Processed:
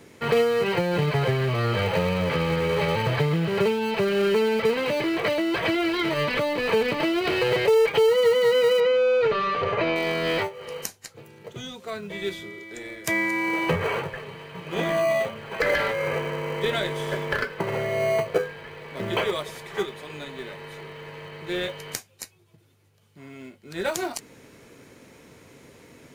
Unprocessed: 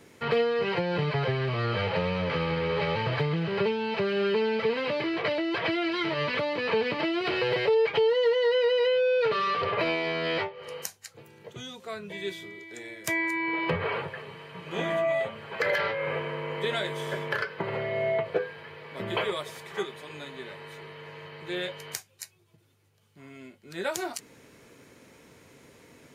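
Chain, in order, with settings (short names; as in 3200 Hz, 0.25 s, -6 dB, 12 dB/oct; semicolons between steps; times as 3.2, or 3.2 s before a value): in parallel at -12 dB: sample-and-hold 25×; 8.8–9.96 on the sum: air absorption 170 m; gain +3 dB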